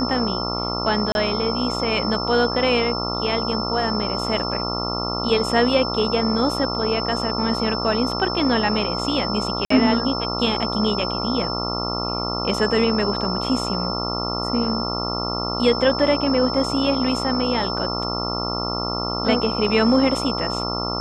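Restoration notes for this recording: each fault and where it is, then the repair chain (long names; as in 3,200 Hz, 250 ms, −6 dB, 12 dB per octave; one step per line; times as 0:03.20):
mains buzz 60 Hz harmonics 23 −27 dBFS
whistle 5,300 Hz −27 dBFS
0:01.12–0:01.15: drop-out 31 ms
0:09.65–0:09.70: drop-out 54 ms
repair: notch filter 5,300 Hz, Q 30
hum removal 60 Hz, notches 23
repair the gap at 0:01.12, 31 ms
repair the gap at 0:09.65, 54 ms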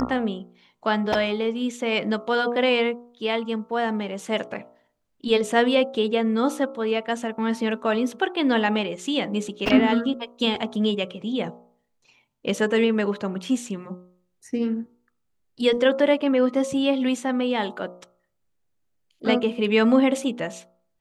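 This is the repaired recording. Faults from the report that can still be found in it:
none of them is left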